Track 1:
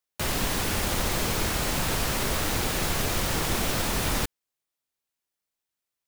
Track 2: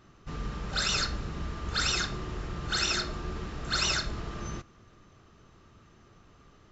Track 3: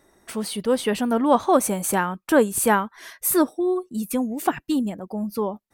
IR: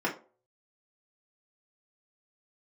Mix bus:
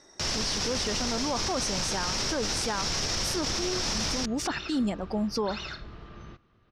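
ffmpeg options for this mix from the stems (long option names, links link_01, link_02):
-filter_complex "[0:a]volume=3dB[link_01];[1:a]lowpass=frequency=4400:width=0.5412,lowpass=frequency=4400:width=1.3066,adelay=1750,volume=-8dB[link_02];[2:a]lowshelf=frequency=220:gain=-5,volume=1.5dB[link_03];[link_01][link_03]amix=inputs=2:normalize=0,lowpass=frequency=5500:width_type=q:width=6,acompressor=threshold=-17dB:ratio=6,volume=0dB[link_04];[link_02][link_04]amix=inputs=2:normalize=0,alimiter=limit=-20.5dB:level=0:latency=1:release=22"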